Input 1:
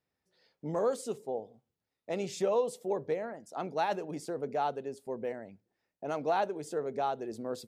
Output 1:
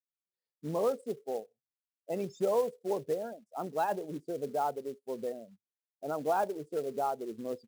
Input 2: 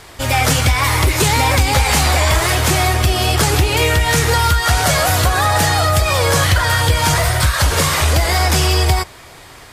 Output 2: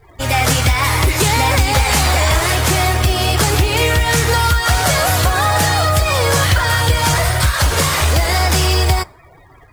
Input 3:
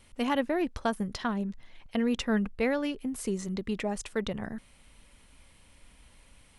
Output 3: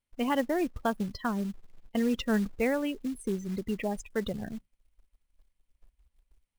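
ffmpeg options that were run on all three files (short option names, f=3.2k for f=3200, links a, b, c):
-af "afftdn=nr=30:nf=-36,acrusher=bits=5:mode=log:mix=0:aa=0.000001"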